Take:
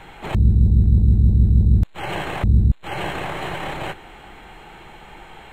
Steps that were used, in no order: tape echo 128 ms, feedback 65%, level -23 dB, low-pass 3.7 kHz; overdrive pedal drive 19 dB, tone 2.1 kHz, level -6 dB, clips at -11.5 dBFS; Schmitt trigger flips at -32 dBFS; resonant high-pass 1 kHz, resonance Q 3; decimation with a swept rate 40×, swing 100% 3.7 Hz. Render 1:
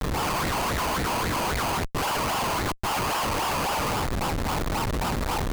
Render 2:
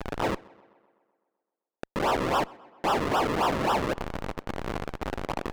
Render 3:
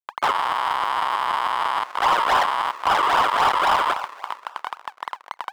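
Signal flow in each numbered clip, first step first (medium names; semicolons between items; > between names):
overdrive pedal > tape echo > decimation with a swept rate > resonant high-pass > Schmitt trigger; resonant high-pass > Schmitt trigger > decimation with a swept rate > overdrive pedal > tape echo; Schmitt trigger > tape echo > decimation with a swept rate > resonant high-pass > overdrive pedal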